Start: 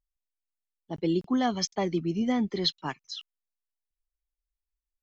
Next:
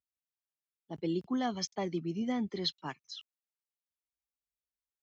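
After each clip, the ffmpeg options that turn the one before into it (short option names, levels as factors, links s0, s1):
-af "highpass=f=65:w=0.5412,highpass=f=65:w=1.3066,volume=0.473"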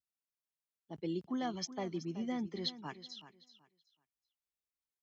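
-af "aecho=1:1:377|754|1131:0.2|0.0459|0.0106,volume=0.596"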